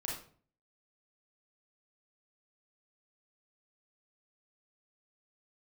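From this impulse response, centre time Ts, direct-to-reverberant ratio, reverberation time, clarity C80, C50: 41 ms, -3.5 dB, 0.45 s, 8.5 dB, 3.0 dB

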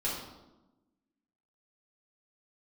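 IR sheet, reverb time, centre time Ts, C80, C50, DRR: 1.0 s, 57 ms, 5.0 dB, 2.0 dB, -8.0 dB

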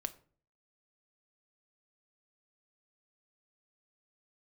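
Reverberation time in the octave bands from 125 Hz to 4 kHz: 0.65 s, 0.55 s, 0.50 s, 0.40 s, 0.35 s, 0.30 s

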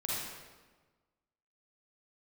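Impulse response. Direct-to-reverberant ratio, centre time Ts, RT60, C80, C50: -6.5 dB, 107 ms, 1.3 s, 0.0 dB, -4.5 dB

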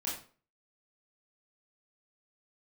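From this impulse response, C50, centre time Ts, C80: 4.5 dB, 38 ms, 9.5 dB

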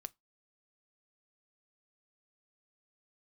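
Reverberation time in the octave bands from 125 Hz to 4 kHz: 0.20 s, 0.20 s, 0.15 s, 0.20 s, 0.15 s, 0.15 s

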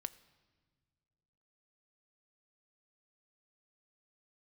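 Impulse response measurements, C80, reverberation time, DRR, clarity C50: 19.5 dB, no single decay rate, 12.5 dB, 18.0 dB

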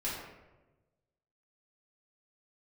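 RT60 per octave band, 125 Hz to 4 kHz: 1.6 s, 1.3 s, 1.3 s, 1.0 s, 0.90 s, 0.60 s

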